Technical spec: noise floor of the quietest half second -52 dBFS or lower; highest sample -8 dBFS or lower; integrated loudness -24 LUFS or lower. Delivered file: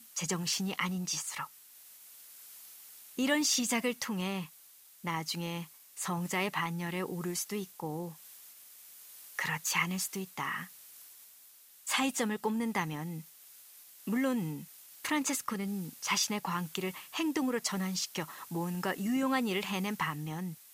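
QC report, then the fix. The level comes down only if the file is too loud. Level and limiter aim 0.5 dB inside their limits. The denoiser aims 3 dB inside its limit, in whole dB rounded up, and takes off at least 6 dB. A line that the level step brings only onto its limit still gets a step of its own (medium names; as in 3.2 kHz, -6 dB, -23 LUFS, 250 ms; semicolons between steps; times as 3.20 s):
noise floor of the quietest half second -58 dBFS: pass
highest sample -16.0 dBFS: pass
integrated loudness -33.5 LUFS: pass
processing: none needed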